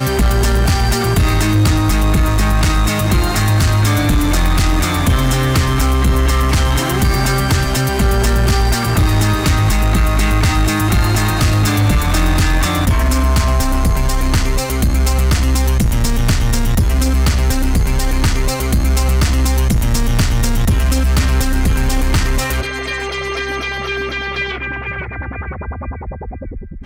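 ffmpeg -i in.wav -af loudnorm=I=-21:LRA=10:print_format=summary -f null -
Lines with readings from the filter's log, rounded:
Input Integrated:    -15.6 LUFS
Input True Peak:      -6.3 dBTP
Input LRA:             7.4 LU
Input Threshold:     -26.0 LUFS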